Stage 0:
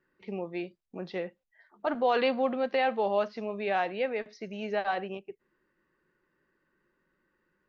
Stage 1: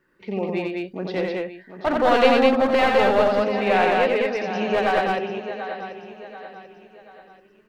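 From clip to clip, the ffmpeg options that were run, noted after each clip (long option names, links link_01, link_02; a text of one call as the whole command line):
ffmpeg -i in.wav -filter_complex "[0:a]asplit=2[link_01][link_02];[link_02]aecho=0:1:737|1474|2211|2948:0.266|0.106|0.0426|0.017[link_03];[link_01][link_03]amix=inputs=2:normalize=0,aeval=exprs='clip(val(0),-1,0.0447)':channel_layout=same,asplit=2[link_04][link_05];[link_05]aecho=0:1:87.46|204.1:0.708|0.794[link_06];[link_04][link_06]amix=inputs=2:normalize=0,volume=8dB" out.wav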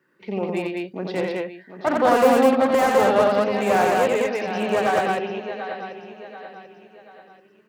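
ffmpeg -i in.wav -filter_complex "[0:a]aeval=exprs='0.631*(cos(1*acos(clip(val(0)/0.631,-1,1)))-cos(1*PI/2))+0.0708*(cos(4*acos(clip(val(0)/0.631,-1,1)))-cos(4*PI/2))':channel_layout=same,highpass=frequency=110:width=0.5412,highpass=frequency=110:width=1.3066,acrossover=split=1700[link_01][link_02];[link_02]aeval=exprs='0.0355*(abs(mod(val(0)/0.0355+3,4)-2)-1)':channel_layout=same[link_03];[link_01][link_03]amix=inputs=2:normalize=0" out.wav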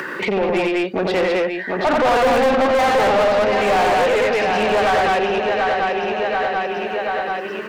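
ffmpeg -i in.wav -filter_complex "[0:a]acompressor=mode=upward:threshold=-21dB:ratio=2.5,asplit=2[link_01][link_02];[link_02]highpass=frequency=720:poles=1,volume=27dB,asoftclip=type=tanh:threshold=-5dB[link_03];[link_01][link_03]amix=inputs=2:normalize=0,lowpass=frequency=2600:poles=1,volume=-6dB,volume=-4dB" out.wav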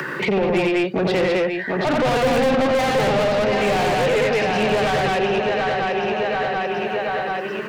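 ffmpeg -i in.wav -filter_complex "[0:a]equalizer=frequency=140:width_type=o:width=0.4:gain=14.5,acrossover=split=120|530|1900[link_01][link_02][link_03][link_04];[link_03]alimiter=limit=-20.5dB:level=0:latency=1[link_05];[link_01][link_02][link_05][link_04]amix=inputs=4:normalize=0" out.wav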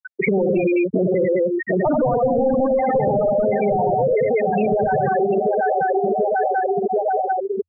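ffmpeg -i in.wav -af "afftfilt=real='re*gte(hypot(re,im),0.316)':imag='im*gte(hypot(re,im),0.316)':win_size=1024:overlap=0.75,equalizer=frequency=87:width_type=o:width=0.29:gain=9.5,acompressor=threshold=-23dB:ratio=6,volume=7.5dB" out.wav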